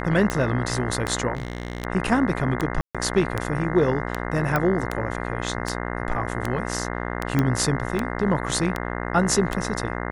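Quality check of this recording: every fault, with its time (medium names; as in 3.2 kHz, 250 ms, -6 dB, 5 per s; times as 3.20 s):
buzz 60 Hz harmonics 35 -29 dBFS
tick 78 rpm -10 dBFS
1.35–1.85 s: clipped -24 dBFS
2.81–2.95 s: dropout 136 ms
4.56 s: pop -9 dBFS
7.39 s: pop -9 dBFS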